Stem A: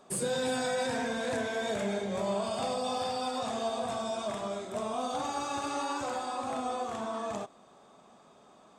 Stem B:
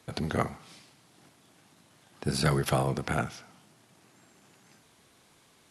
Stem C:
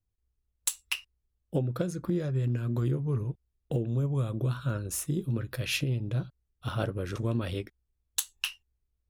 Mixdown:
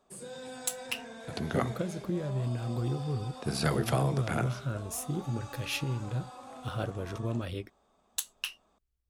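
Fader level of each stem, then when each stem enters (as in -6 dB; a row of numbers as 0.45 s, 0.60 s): -12.5 dB, -3.0 dB, -3.5 dB; 0.00 s, 1.20 s, 0.00 s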